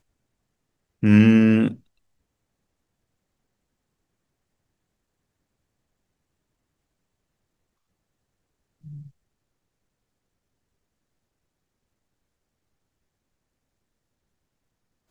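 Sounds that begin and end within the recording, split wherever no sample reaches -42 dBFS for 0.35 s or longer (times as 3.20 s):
1.03–1.76 s
8.84–9.08 s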